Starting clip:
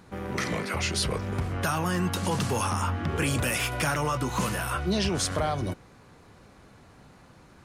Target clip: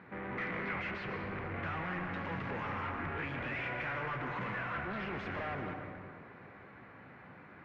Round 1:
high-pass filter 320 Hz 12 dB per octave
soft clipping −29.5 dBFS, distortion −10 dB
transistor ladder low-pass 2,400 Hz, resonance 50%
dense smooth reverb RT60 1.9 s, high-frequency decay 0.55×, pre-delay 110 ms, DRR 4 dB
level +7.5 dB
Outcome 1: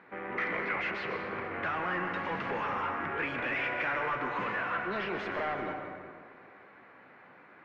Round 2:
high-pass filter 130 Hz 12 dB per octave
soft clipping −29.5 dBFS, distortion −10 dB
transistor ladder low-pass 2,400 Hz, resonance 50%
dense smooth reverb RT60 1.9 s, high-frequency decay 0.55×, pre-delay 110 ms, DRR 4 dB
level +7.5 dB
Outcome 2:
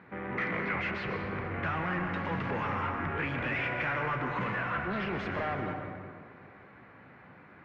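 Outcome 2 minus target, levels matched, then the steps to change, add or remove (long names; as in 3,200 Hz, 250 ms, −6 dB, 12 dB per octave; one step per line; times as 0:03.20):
soft clipping: distortion −5 dB
change: soft clipping −37.5 dBFS, distortion −5 dB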